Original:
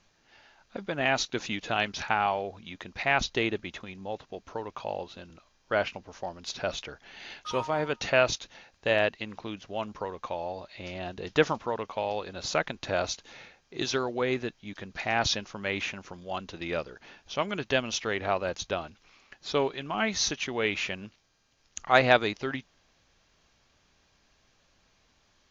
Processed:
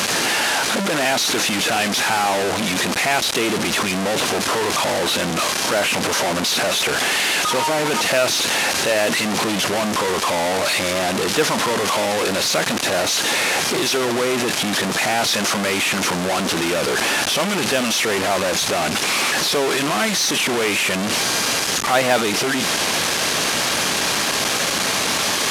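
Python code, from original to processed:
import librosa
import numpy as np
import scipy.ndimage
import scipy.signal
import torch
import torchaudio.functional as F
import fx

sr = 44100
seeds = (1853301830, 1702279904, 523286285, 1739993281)

y = fx.delta_mod(x, sr, bps=64000, step_db=-20.5)
y = fx.leveller(y, sr, passes=3)
y = scipy.signal.sosfilt(scipy.signal.butter(2, 200.0, 'highpass', fs=sr, output='sos'), y)
y = y * librosa.db_to_amplitude(-4.0)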